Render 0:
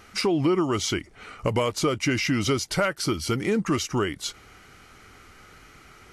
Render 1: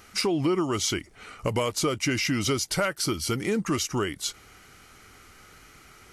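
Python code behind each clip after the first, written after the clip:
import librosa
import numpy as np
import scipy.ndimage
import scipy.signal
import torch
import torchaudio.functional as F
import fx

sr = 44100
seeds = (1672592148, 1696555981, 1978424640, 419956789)

y = fx.high_shelf(x, sr, hz=5800.0, db=8.5)
y = F.gain(torch.from_numpy(y), -2.5).numpy()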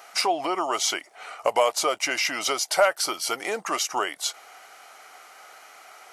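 y = fx.highpass_res(x, sr, hz=700.0, q=4.2)
y = F.gain(torch.from_numpy(y), 2.5).numpy()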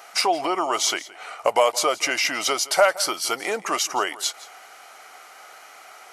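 y = x + 10.0 ** (-19.0 / 20.0) * np.pad(x, (int(169 * sr / 1000.0), 0))[:len(x)]
y = F.gain(torch.from_numpy(y), 2.5).numpy()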